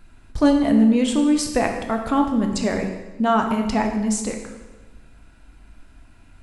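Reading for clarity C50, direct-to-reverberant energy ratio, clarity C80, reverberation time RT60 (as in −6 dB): 6.0 dB, 3.0 dB, 8.0 dB, 1.2 s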